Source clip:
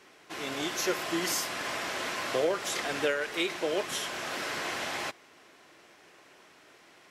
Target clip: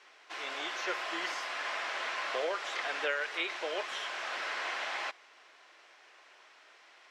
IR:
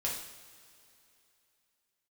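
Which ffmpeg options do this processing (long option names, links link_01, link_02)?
-filter_complex "[0:a]acrossover=split=3300[link_01][link_02];[link_02]acompressor=threshold=-44dB:ratio=4:attack=1:release=60[link_03];[link_01][link_03]amix=inputs=2:normalize=0,highpass=710,lowpass=5600"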